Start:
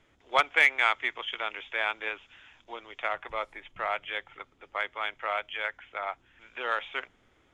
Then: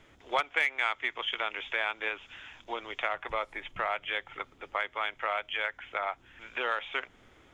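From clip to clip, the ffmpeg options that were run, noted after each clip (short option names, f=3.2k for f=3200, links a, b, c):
-af "acompressor=threshold=-37dB:ratio=2.5,volume=6.5dB"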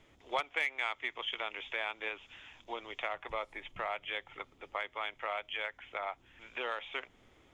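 -af "equalizer=f=1.5k:w=2.8:g=-5.5,volume=-4dB"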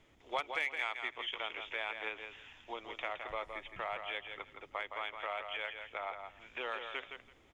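-af "aecho=1:1:166|332|498:0.447|0.0759|0.0129,volume=-2.5dB"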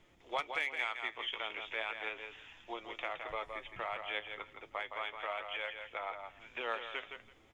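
-af "flanger=delay=5.6:depth=3.9:regen=67:speed=0.35:shape=sinusoidal,volume=4.5dB"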